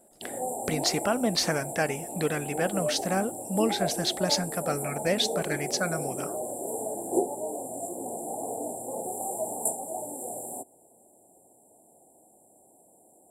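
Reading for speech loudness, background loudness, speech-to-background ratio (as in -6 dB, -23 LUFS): -29.0 LUFS, -33.0 LUFS, 4.0 dB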